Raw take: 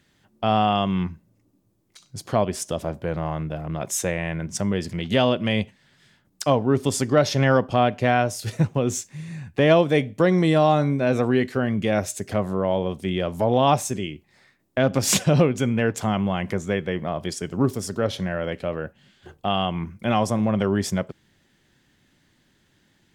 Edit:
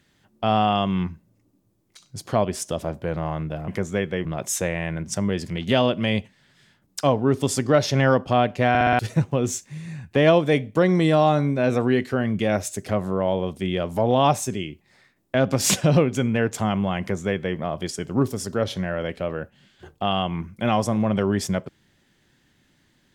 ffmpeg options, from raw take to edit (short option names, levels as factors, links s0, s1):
-filter_complex "[0:a]asplit=8[s0][s1][s2][s3][s4][s5][s6][s7];[s0]atrim=end=3.682[s8];[s1]atrim=start=16.428:end=17.002[s9];[s2]atrim=start=3.678:end=8.182[s10];[s3]atrim=start=8.118:end=8.182[s11];[s4]atrim=start=8.118:end=8.182[s12];[s5]atrim=start=8.118:end=8.182[s13];[s6]atrim=start=8.118:end=8.182[s14];[s7]atrim=start=8.418[s15];[s8][s9]acrossfade=d=0.004:c1=hsin:c2=hsin[s16];[s16][s10]acrossfade=d=0.004:c1=hsin:c2=hsin[s17];[s17][s11]acrossfade=d=0.004:c1=hsin:c2=hsin[s18];[s18][s12]acrossfade=d=0.004:c1=hsin:c2=hsin[s19];[s19][s13]acrossfade=d=0.004:c1=hsin:c2=hsin[s20];[s20][s14]acrossfade=d=0.004:c1=hsin:c2=hsin[s21];[s21][s15]acrossfade=d=0.004:c1=hsin:c2=hsin"